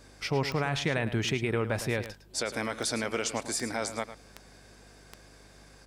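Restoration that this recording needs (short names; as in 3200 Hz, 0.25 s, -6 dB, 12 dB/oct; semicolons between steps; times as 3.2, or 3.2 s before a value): de-click; de-hum 50.5 Hz, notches 5; inverse comb 0.107 s -12.5 dB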